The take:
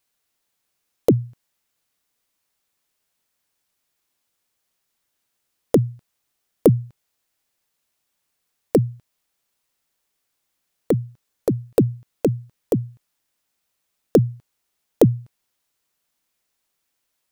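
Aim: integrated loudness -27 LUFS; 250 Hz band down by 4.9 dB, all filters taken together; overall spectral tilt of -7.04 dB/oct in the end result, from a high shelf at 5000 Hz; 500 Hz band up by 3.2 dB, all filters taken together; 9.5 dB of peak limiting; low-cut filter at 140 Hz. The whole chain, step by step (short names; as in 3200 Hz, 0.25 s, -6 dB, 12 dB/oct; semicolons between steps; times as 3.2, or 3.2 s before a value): HPF 140 Hz; bell 250 Hz -9 dB; bell 500 Hz +6.5 dB; high shelf 5000 Hz +7 dB; limiter -7.5 dBFS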